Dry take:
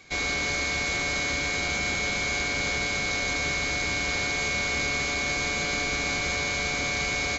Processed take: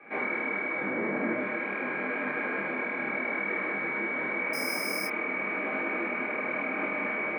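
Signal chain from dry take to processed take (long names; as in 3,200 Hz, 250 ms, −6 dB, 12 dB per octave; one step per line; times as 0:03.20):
0:00.79–0:01.36: spectral tilt −3 dB per octave
four-comb reverb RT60 0.61 s, combs from 31 ms, DRR −2.5 dB
brickwall limiter −23 dBFS, peak gain reduction 12 dB
single-sideband voice off tune +53 Hz 150–2,000 Hz
0:04.53–0:05.07: bad sample-rate conversion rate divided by 6×, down none, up hold
micro pitch shift up and down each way 30 cents
level +8.5 dB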